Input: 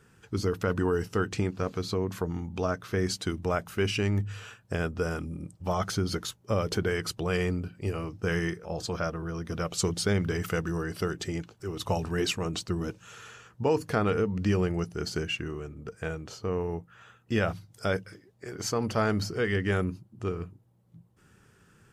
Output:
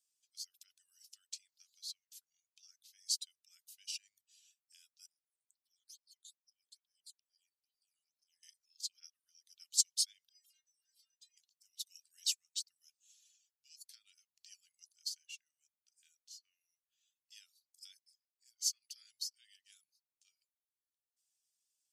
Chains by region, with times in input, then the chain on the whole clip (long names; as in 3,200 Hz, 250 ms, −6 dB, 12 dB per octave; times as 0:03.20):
0:05.06–0:08.43: all-pass phaser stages 8, 2.3 Hz, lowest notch 710–2,600 Hz + downward compressor 16 to 1, threshold −41 dBFS
0:10.29–0:11.37: mid-hump overdrive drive 11 dB, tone 4,100 Hz, clips at −16.5 dBFS + stiff-string resonator 160 Hz, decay 0.46 s, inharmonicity 0.008
whole clip: reverb reduction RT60 0.62 s; inverse Chebyshev high-pass filter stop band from 940 Hz, stop band 70 dB; expander for the loud parts 1.5 to 1, over −56 dBFS; level +3.5 dB